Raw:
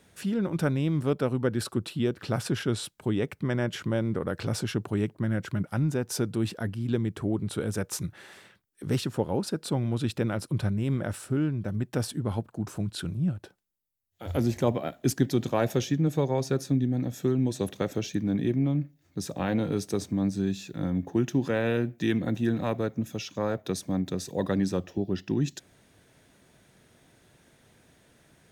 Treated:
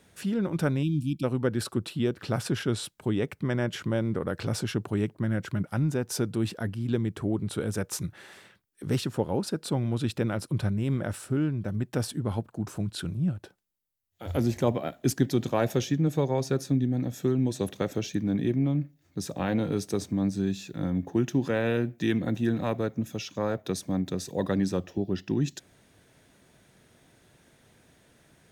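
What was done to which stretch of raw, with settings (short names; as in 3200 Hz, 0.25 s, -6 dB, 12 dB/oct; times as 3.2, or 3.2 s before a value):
0.83–1.24 spectral delete 330–2300 Hz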